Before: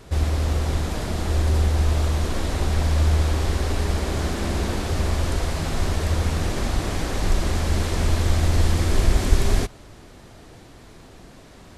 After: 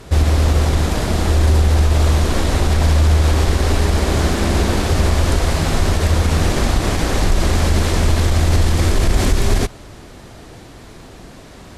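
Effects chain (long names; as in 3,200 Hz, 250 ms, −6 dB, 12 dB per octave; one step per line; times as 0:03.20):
brickwall limiter −14 dBFS, peak gain reduction 10.5 dB
harmonic generator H 7 −34 dB, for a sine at −14 dBFS
level +8.5 dB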